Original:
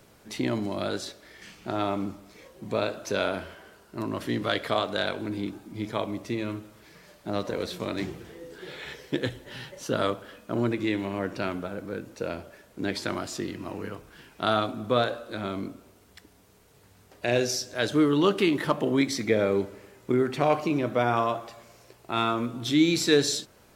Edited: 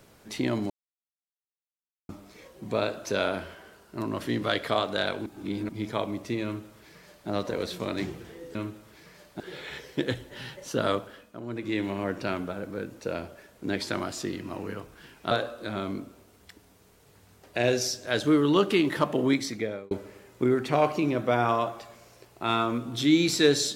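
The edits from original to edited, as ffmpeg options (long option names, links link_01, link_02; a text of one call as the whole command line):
ffmpeg -i in.wav -filter_complex "[0:a]asplit=11[link_01][link_02][link_03][link_04][link_05][link_06][link_07][link_08][link_09][link_10][link_11];[link_01]atrim=end=0.7,asetpts=PTS-STARTPTS,afade=type=out:start_time=0.696:duration=0.004:curve=hsin[link_12];[link_02]atrim=start=0.7:end=2.09,asetpts=PTS-STARTPTS,volume=0[link_13];[link_03]atrim=start=2.09:end=5.262,asetpts=PTS-STARTPTS,afade=type=in:duration=0.004:curve=hsin[link_14];[link_04]atrim=start=5.258:end=5.692,asetpts=PTS-STARTPTS,areverse[link_15];[link_05]atrim=start=5.688:end=8.552[link_16];[link_06]atrim=start=6.438:end=7.292[link_17];[link_07]atrim=start=8.548:end=10.56,asetpts=PTS-STARTPTS,afade=type=out:start_time=1.632:duration=0.38:silence=0.237137[link_18];[link_08]atrim=start=10.56:end=10.61,asetpts=PTS-STARTPTS,volume=-12.5dB[link_19];[link_09]atrim=start=10.61:end=14.462,asetpts=PTS-STARTPTS,afade=type=in:duration=0.38:silence=0.237137[link_20];[link_10]atrim=start=14.988:end=19.59,asetpts=PTS-STARTPTS,afade=type=out:start_time=3.982:duration=0.62[link_21];[link_11]atrim=start=19.59,asetpts=PTS-STARTPTS,afade=type=in:duration=0.004:curve=hsin[link_22];[link_12][link_13][link_14]concat=n=3:v=0:a=1[link_23];[link_23][link_15]acrossfade=duration=0.004:curve1=hsin:curve2=hsin[link_24];[link_24][link_16]acrossfade=duration=0.004:curve1=hsin:curve2=hsin[link_25];[link_25][link_17]acrossfade=duration=0.004:curve1=hsin:curve2=hsin[link_26];[link_18][link_19][link_20]concat=n=3:v=0:a=1[link_27];[link_26][link_27]acrossfade=duration=0.004:curve1=hsin:curve2=hsin[link_28];[link_21][link_22]concat=n=2:v=0:a=1[link_29];[link_28][link_29]acrossfade=duration=0.004:curve1=hsin:curve2=hsin" out.wav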